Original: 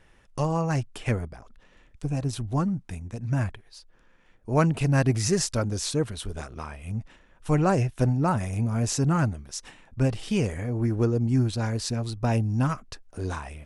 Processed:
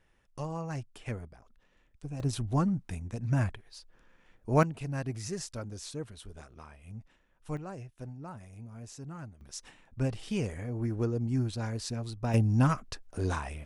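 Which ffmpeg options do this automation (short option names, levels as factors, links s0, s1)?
-af "asetnsamples=n=441:p=0,asendcmd='2.2 volume volume -2dB;4.63 volume volume -13dB;7.57 volume volume -20dB;9.41 volume volume -7dB;12.34 volume volume 0dB',volume=0.282"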